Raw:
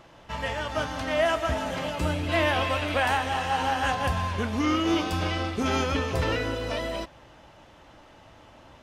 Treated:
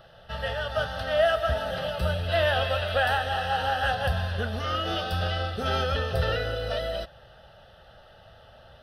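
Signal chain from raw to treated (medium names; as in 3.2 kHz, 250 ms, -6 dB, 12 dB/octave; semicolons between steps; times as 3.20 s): static phaser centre 1.5 kHz, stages 8; trim +2.5 dB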